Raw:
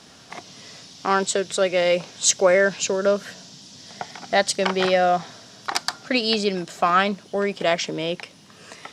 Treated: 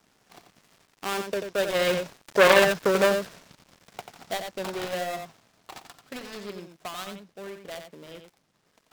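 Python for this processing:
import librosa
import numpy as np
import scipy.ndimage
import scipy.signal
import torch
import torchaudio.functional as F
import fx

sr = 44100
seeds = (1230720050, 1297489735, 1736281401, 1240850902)

p1 = fx.dead_time(x, sr, dead_ms=0.23)
p2 = fx.doppler_pass(p1, sr, speed_mps=6, closest_m=2.5, pass_at_s=2.62)
p3 = p2 + fx.echo_single(p2, sr, ms=89, db=-7.5, dry=0)
p4 = fx.transformer_sat(p3, sr, knee_hz=1900.0)
y = F.gain(torch.from_numpy(p4), 4.5).numpy()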